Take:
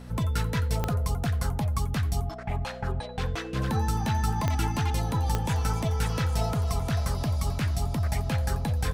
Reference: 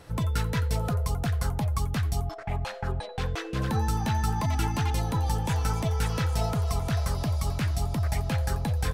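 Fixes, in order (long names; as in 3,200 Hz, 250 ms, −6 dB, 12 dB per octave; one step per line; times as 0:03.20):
click removal
hum removal 61.4 Hz, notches 4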